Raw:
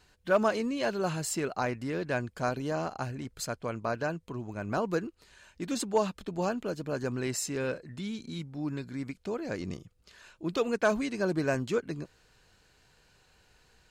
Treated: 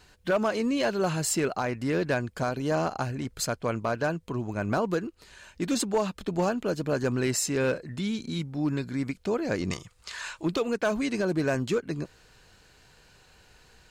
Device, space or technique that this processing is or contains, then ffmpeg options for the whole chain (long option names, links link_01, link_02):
limiter into clipper: -filter_complex "[0:a]asplit=3[link_01][link_02][link_03];[link_01]afade=type=out:start_time=9.7:duration=0.02[link_04];[link_02]equalizer=frequency=250:width_type=o:width=1:gain=-6,equalizer=frequency=1000:width_type=o:width=1:gain=11,equalizer=frequency=2000:width_type=o:width=1:gain=8,equalizer=frequency=4000:width_type=o:width=1:gain=6,equalizer=frequency=8000:width_type=o:width=1:gain=12,afade=type=in:start_time=9.7:duration=0.02,afade=type=out:start_time=10.44:duration=0.02[link_05];[link_03]afade=type=in:start_time=10.44:duration=0.02[link_06];[link_04][link_05][link_06]amix=inputs=3:normalize=0,alimiter=limit=-22.5dB:level=0:latency=1:release=281,asoftclip=type=hard:threshold=-25dB,volume=6.5dB"